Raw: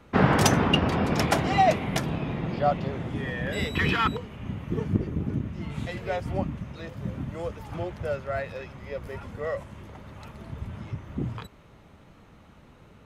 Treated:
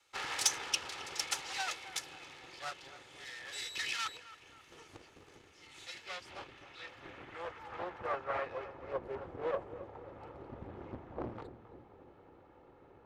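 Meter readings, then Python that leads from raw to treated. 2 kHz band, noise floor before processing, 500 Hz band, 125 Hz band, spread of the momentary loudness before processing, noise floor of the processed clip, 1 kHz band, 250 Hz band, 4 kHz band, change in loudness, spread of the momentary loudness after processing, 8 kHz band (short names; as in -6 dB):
-10.5 dB, -53 dBFS, -13.0 dB, -27.0 dB, 17 LU, -61 dBFS, -14.5 dB, -23.5 dB, -5.5 dB, -12.0 dB, 20 LU, -1.0 dB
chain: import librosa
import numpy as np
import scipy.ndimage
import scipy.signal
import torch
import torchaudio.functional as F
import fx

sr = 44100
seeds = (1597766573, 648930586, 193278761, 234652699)

y = fx.lower_of_two(x, sr, delay_ms=2.3)
y = fx.low_shelf(y, sr, hz=61.0, db=10.0)
y = fx.notch(y, sr, hz=440.0, q=12.0)
y = fx.filter_sweep_bandpass(y, sr, from_hz=6800.0, to_hz=540.0, start_s=5.62, end_s=9.02, q=0.94)
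y = fx.echo_filtered(y, sr, ms=268, feedback_pct=58, hz=1600.0, wet_db=-13)
y = fx.doppler_dist(y, sr, depth_ms=0.93)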